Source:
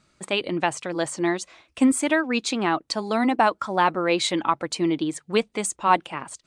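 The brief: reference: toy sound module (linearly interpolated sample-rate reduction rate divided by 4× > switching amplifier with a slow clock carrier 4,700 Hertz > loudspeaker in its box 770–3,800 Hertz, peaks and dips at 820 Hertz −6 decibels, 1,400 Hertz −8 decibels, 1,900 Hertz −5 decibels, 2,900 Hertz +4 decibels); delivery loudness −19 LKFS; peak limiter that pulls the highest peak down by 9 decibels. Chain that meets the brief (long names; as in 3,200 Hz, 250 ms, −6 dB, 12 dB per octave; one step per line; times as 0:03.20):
brickwall limiter −13.5 dBFS
linearly interpolated sample-rate reduction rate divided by 4×
switching amplifier with a slow clock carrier 4,700 Hz
loudspeaker in its box 770–3,800 Hz, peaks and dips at 820 Hz −6 dB, 1,400 Hz −8 dB, 1,900 Hz −5 dB, 2,900 Hz +4 dB
level +16 dB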